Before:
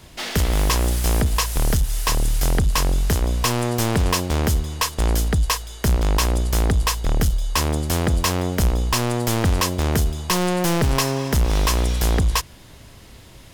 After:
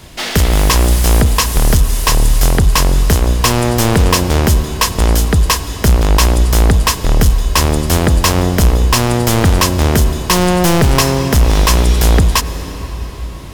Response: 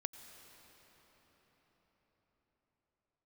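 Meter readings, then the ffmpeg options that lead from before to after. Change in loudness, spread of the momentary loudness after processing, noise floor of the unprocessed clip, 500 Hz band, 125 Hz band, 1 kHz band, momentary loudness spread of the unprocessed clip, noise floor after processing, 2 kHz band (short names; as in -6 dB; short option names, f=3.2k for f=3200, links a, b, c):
+8.5 dB, 3 LU, -44 dBFS, +8.5 dB, +8.5 dB, +8.5 dB, 3 LU, -25 dBFS, +8.5 dB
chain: -filter_complex "[0:a]asplit=2[a][b];[1:a]atrim=start_sample=2205[c];[b][c]afir=irnorm=-1:irlink=0,volume=8.5dB[d];[a][d]amix=inputs=2:normalize=0,volume=-1.5dB"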